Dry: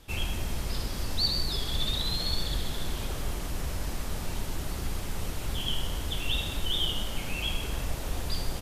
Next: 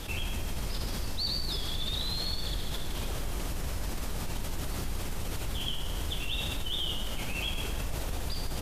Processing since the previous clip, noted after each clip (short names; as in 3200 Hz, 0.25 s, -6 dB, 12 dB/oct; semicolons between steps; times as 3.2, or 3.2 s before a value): de-hum 60.58 Hz, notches 37; fast leveller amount 70%; gain -6.5 dB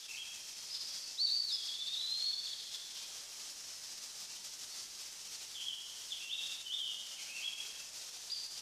band-pass 5600 Hz, Q 2.3; on a send at -5 dB: reverb RT60 1.2 s, pre-delay 4 ms; on the sum: gain +2.5 dB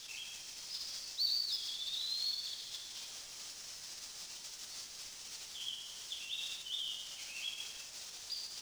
median filter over 3 samples; added noise pink -70 dBFS